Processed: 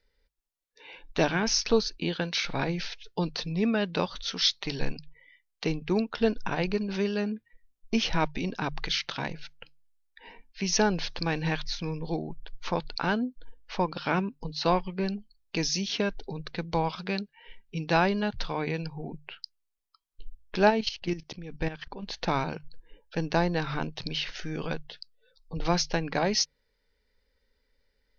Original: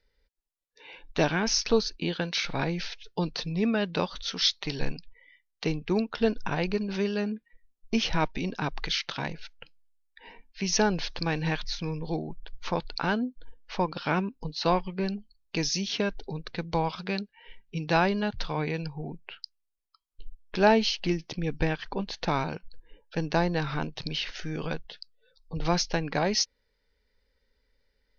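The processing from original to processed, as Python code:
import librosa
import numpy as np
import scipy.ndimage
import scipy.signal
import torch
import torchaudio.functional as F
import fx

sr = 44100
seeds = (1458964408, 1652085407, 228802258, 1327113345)

y = fx.hum_notches(x, sr, base_hz=50, count=3)
y = fx.level_steps(y, sr, step_db=13, at=(20.69, 22.02), fade=0.02)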